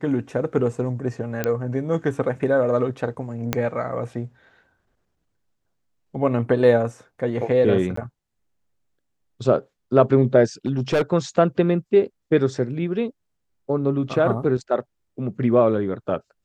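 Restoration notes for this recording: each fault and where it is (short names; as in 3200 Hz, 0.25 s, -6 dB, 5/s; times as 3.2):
1.44 pop -9 dBFS
3.53 pop -6 dBFS
7.96–7.97 gap 14 ms
10.66–11.02 clipped -15.5 dBFS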